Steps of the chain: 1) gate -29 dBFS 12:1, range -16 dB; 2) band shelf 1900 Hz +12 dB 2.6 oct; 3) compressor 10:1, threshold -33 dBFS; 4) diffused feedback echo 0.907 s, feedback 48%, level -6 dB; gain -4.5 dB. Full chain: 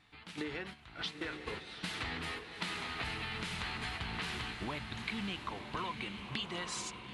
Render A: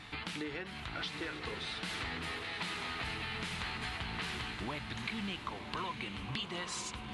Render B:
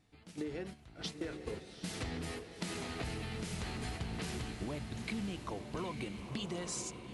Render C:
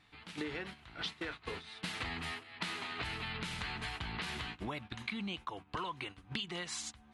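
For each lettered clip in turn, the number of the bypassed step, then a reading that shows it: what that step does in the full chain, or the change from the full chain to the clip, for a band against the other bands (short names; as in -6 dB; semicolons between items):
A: 1, momentary loudness spread change -1 LU; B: 2, 2 kHz band -10.0 dB; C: 4, echo-to-direct -5.0 dB to none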